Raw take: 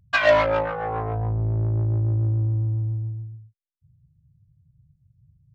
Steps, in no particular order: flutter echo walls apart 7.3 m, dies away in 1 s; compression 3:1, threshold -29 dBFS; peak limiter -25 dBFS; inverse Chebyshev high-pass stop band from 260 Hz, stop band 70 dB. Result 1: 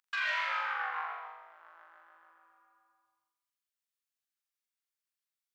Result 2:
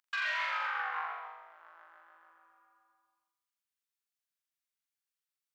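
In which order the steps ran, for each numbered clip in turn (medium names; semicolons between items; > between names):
inverse Chebyshev high-pass > peak limiter > flutter echo > compression; inverse Chebyshev high-pass > compression > flutter echo > peak limiter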